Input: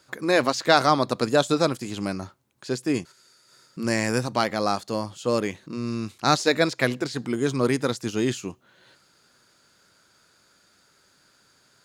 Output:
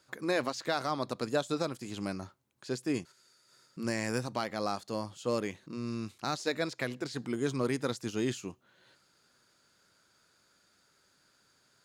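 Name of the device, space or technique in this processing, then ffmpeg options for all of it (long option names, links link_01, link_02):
limiter into clipper: -af "alimiter=limit=-11dB:level=0:latency=1:release=297,asoftclip=type=hard:threshold=-12dB,volume=-7.5dB"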